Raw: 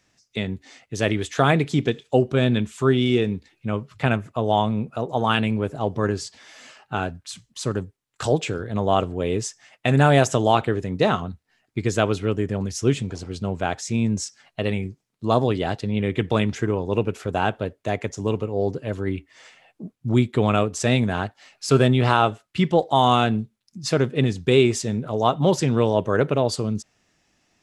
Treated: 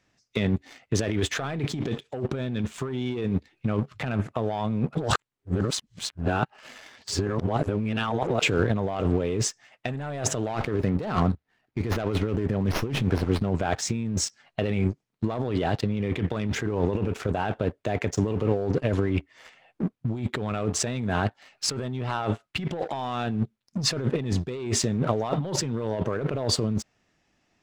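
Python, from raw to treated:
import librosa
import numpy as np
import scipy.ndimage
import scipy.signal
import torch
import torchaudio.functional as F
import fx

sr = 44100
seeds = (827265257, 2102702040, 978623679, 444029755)

y = fx.running_max(x, sr, window=5, at=(10.38, 13.51))
y = fx.edit(y, sr, fx.reverse_span(start_s=4.95, length_s=3.46), tone=tone)
y = fx.leveller(y, sr, passes=2)
y = fx.high_shelf(y, sr, hz=5600.0, db=-11.0)
y = fx.over_compress(y, sr, threshold_db=-22.0, ratio=-1.0)
y = y * 10.0 ** (-4.5 / 20.0)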